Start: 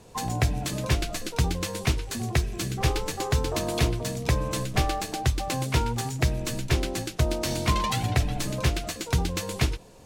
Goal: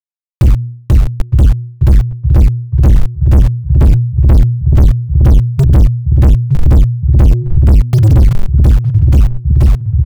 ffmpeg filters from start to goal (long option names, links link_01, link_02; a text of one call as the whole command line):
ffmpeg -i in.wav -filter_complex "[0:a]asplit=2[link_01][link_02];[link_02]acrusher=samples=20:mix=1:aa=0.000001:lfo=1:lforange=12:lforate=4,volume=-9dB[link_03];[link_01][link_03]amix=inputs=2:normalize=0,afftfilt=real='re*gte(hypot(re,im),0.631)':imag='im*gte(hypot(re,im),0.631)':win_size=1024:overlap=0.75,dynaudnorm=framelen=210:gausssize=21:maxgain=11dB,highshelf=frequency=8200:gain=4.5,acrusher=bits=6:mix=0:aa=0.000001,bandreject=frequency=120.1:width_type=h:width=4,bandreject=frequency=240.2:width_type=h:width=4,bandreject=frequency=360.3:width_type=h:width=4,asplit=2[link_04][link_05];[link_05]adelay=912,lowpass=frequency=860:poles=1,volume=-15.5dB,asplit=2[link_06][link_07];[link_07]adelay=912,lowpass=frequency=860:poles=1,volume=0.35,asplit=2[link_08][link_09];[link_09]adelay=912,lowpass=frequency=860:poles=1,volume=0.35[link_10];[link_06][link_08][link_10]amix=inputs=3:normalize=0[link_11];[link_04][link_11]amix=inputs=2:normalize=0,asoftclip=type=tanh:threshold=-29dB,acompressor=threshold=-38dB:ratio=6,lowshelf=frequency=180:gain=8.5,alimiter=level_in=27.5dB:limit=-1dB:release=50:level=0:latency=1,volume=-1dB" out.wav